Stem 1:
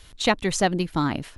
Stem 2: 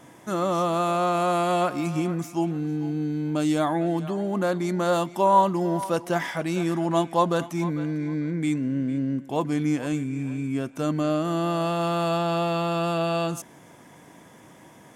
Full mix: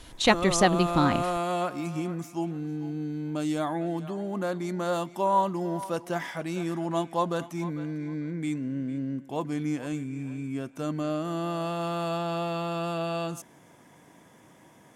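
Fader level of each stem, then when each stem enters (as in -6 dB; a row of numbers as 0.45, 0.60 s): 0.0, -5.5 dB; 0.00, 0.00 s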